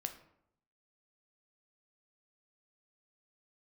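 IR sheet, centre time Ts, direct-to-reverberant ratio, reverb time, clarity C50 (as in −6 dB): 11 ms, 6.0 dB, 0.75 s, 11.0 dB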